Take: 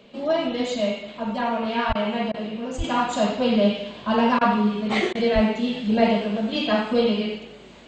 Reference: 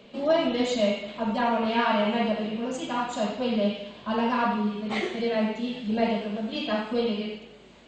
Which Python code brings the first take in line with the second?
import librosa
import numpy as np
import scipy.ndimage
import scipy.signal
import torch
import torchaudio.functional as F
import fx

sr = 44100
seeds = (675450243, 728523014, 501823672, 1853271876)

y = fx.highpass(x, sr, hz=140.0, slope=24, at=(1.88, 2.0), fade=0.02)
y = fx.highpass(y, sr, hz=140.0, slope=24, at=(2.77, 2.89), fade=0.02)
y = fx.highpass(y, sr, hz=140.0, slope=24, at=(5.34, 5.46), fade=0.02)
y = fx.fix_interpolate(y, sr, at_s=(1.93, 2.32, 4.39, 5.13), length_ms=20.0)
y = fx.fix_level(y, sr, at_s=2.84, step_db=-6.0)